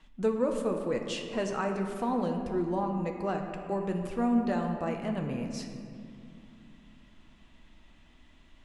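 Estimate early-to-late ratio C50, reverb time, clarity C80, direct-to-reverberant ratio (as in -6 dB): 5.0 dB, 2.5 s, 6.0 dB, 2.5 dB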